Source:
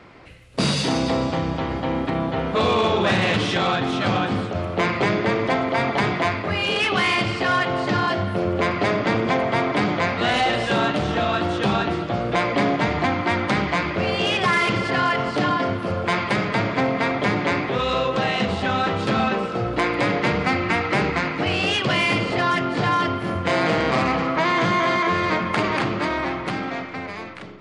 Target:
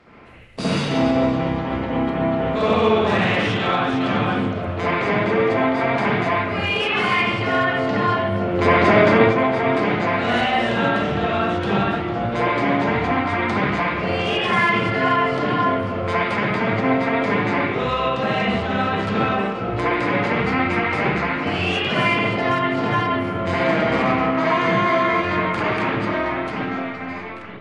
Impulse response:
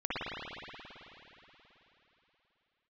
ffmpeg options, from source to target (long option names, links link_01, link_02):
-filter_complex "[0:a]asettb=1/sr,asplit=3[link_01][link_02][link_03];[link_01]atrim=end=8.544[link_04];[link_02]atrim=start=8.54:end=9.18,asetpts=PTS-STARTPTS,afade=type=in:duration=0.004:curve=qsin,afade=type=out:start_time=0.636:duration=0.004:curve=qsin,acontrast=64[link_05];[link_03]atrim=start=9.176[link_06];[link_04][link_05]acrossfade=duration=0.004:curve1=hsin:curve2=qsin[link_07];[link_07][link_06]acrossfade=duration=0.004:curve1=qsin:curve2=hsin[link_08];[1:a]atrim=start_sample=2205,atrim=end_sample=6615,asetrate=38808,aresample=44100[link_09];[link_08][link_09]afir=irnorm=-1:irlink=0,volume=-4.5dB"